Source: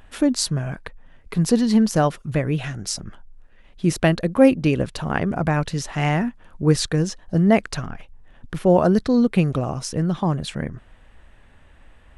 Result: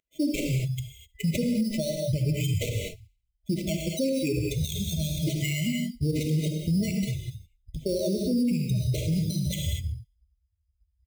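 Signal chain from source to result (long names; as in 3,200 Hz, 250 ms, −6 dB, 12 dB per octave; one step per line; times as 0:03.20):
spectral dynamics exaggerated over time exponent 3
camcorder AGC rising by 74 dB per second
high-pass filter 56 Hz 24 dB per octave
sample-rate reduction 5,000 Hz, jitter 0%
delay with a high-pass on its return 79 ms, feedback 36%, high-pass 2,300 Hz, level −22 dB
reverb whose tail is shaped and stops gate 290 ms flat, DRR 2.5 dB
dynamic equaliser 7,200 Hz, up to +3 dB, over −44 dBFS, Q 3.4
tempo change 1.1×
brickwall limiter −13.5 dBFS, peak gain reduction 10 dB
brick-wall band-stop 650–2,000 Hz
level −5 dB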